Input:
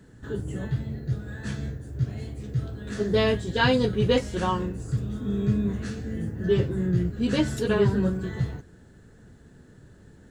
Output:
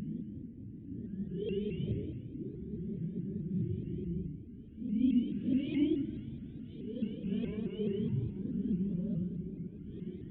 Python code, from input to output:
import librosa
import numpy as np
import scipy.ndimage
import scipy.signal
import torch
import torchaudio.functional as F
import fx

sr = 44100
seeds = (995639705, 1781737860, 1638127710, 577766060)

y = fx.formant_cascade(x, sr, vowel='i')
y = fx.paulstretch(y, sr, seeds[0], factor=4.9, window_s=0.05, from_s=6.21)
y = fx.vibrato_shape(y, sr, shape='saw_up', rate_hz=4.7, depth_cents=160.0)
y = y * 10.0 ** (-3.5 / 20.0)